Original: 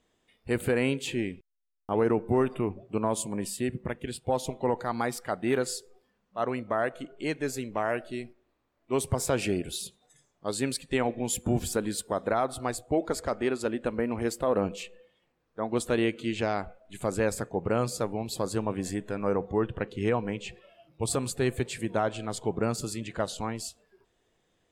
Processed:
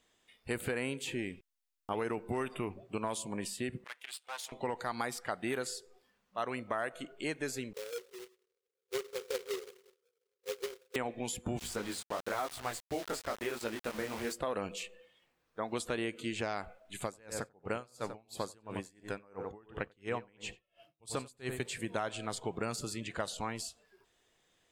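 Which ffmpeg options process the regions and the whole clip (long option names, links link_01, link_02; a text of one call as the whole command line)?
ffmpeg -i in.wav -filter_complex "[0:a]asettb=1/sr,asplit=3[link_01][link_02][link_03];[link_01]atrim=end=3.844[link_04];[link_02]atrim=start=3.84:end=4.52,asetpts=PTS-STARTPTS,afade=type=in:duration=0.004:curve=qsin,afade=type=out:start_time=0.676:duration=0.004:curve=qsin,aeval=exprs='if(lt(val(0),0),0.251*val(0),val(0))':channel_layout=same,highpass=1400[link_05];[link_03]atrim=start=4.516[link_06];[link_04][link_05]acrossfade=duration=0.004:curve1=hsin:curve2=qsin[link_07];[link_07][link_06]acrossfade=duration=0.004:curve1=qsin:curve2=hsin,asettb=1/sr,asplit=3[link_08][link_09][link_10];[link_08]atrim=end=7.734[link_11];[link_09]atrim=start=7.73:end=10.96,asetpts=PTS-STARTPTS,afade=type=in:duration=0.004:curve=qsin,afade=type=out:start_time=3.226:duration=0.004:curve=qsin,asuperpass=centerf=450:order=20:qfactor=2.7,acrusher=bits=2:mode=log:mix=0:aa=0.000001[link_12];[link_10]atrim=start=10.956[link_13];[link_11][link_12]acrossfade=duration=0.004:curve1=hsin:curve2=qsin[link_14];[link_14][link_13]acrossfade=duration=0.004:curve1=qsin:curve2=hsin,asettb=1/sr,asplit=3[link_15][link_16][link_17];[link_15]atrim=end=11.594[link_18];[link_16]atrim=start=11.59:end=14.33,asetpts=PTS-STARTPTS,afade=type=in:duration=0.004:curve=qsin,afade=type=out:start_time=2.736:duration=0.004:curve=qsin,flanger=delay=17:depth=6.4:speed=1,bandreject=frequency=50.69:width_type=h:width=4,bandreject=frequency=101.38:width_type=h:width=4,bandreject=frequency=152.07:width_type=h:width=4,aeval=exprs='val(0)*gte(abs(val(0)),0.0106)':channel_layout=same[link_19];[link_17]atrim=start=14.326[link_20];[link_18][link_19]acrossfade=duration=0.004:curve1=hsin:curve2=qsin[link_21];[link_21][link_20]acrossfade=duration=0.004:curve1=qsin:curve2=hsin,asettb=1/sr,asplit=3[link_22][link_23][link_24];[link_22]atrim=end=17.044[link_25];[link_23]atrim=start=17.04:end=21.6,asetpts=PTS-STARTPTS,afade=type=in:duration=0.004:curve=qsin,afade=type=out:start_time=4.556:duration=0.004:curve=qsin,asplit=2[link_26][link_27];[link_27]adelay=92,lowpass=frequency=1700:poles=1,volume=-8.5dB,asplit=2[link_28][link_29];[link_29]adelay=92,lowpass=frequency=1700:poles=1,volume=0.3,asplit=2[link_30][link_31];[link_31]adelay=92,lowpass=frequency=1700:poles=1,volume=0.3,asplit=2[link_32][link_33];[link_33]adelay=92,lowpass=frequency=1700:poles=1,volume=0.3[link_34];[link_26][link_28][link_30][link_32][link_34]amix=inputs=5:normalize=0,atrim=end_sample=201096,aeval=exprs='val(0)*pow(10,-32*(0.5-0.5*cos(2*PI*2.9*n/s))/20)':channel_layout=same[link_35];[link_24]atrim=start=21.596[link_36];[link_25][link_35]acrossfade=duration=0.004:curve1=hsin:curve2=qsin[link_37];[link_37][link_36]acrossfade=duration=0.004:curve1=qsin:curve2=hsin,tiltshelf=frequency=880:gain=-5,acrossover=split=1800|6800[link_38][link_39][link_40];[link_38]acompressor=threshold=-32dB:ratio=4[link_41];[link_39]acompressor=threshold=-43dB:ratio=4[link_42];[link_40]acompressor=threshold=-48dB:ratio=4[link_43];[link_41][link_42][link_43]amix=inputs=3:normalize=0,volume=-1dB" out.wav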